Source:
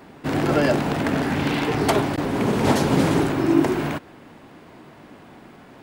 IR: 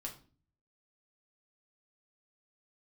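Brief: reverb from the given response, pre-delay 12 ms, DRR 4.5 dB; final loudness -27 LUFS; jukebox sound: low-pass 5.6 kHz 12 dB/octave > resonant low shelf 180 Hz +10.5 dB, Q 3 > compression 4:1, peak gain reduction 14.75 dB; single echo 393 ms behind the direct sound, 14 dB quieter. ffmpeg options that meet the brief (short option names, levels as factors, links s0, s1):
-filter_complex "[0:a]aecho=1:1:393:0.2,asplit=2[s0][s1];[1:a]atrim=start_sample=2205,adelay=12[s2];[s1][s2]afir=irnorm=-1:irlink=0,volume=0.75[s3];[s0][s3]amix=inputs=2:normalize=0,lowpass=5600,lowshelf=f=180:t=q:w=3:g=10.5,acompressor=threshold=0.0891:ratio=4,volume=0.75"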